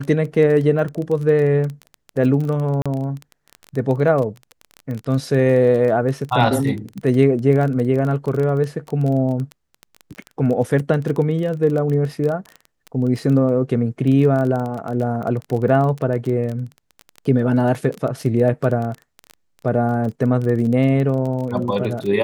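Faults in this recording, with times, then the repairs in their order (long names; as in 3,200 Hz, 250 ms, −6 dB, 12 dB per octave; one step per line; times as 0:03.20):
surface crackle 20 per second −24 dBFS
0:02.82–0:02.86: drop-out 36 ms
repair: click removal
repair the gap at 0:02.82, 36 ms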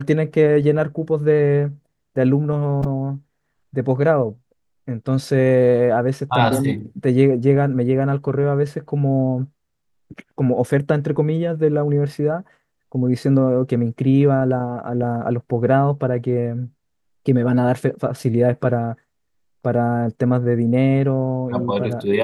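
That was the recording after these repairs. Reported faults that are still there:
none of them is left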